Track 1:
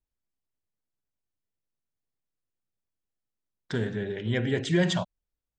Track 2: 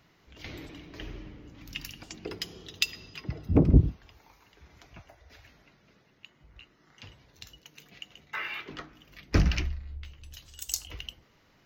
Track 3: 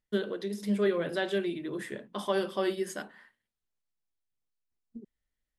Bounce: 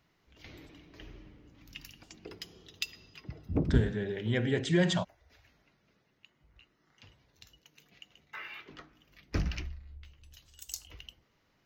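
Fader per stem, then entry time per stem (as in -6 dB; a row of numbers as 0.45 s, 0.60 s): -2.5 dB, -8.5 dB, mute; 0.00 s, 0.00 s, mute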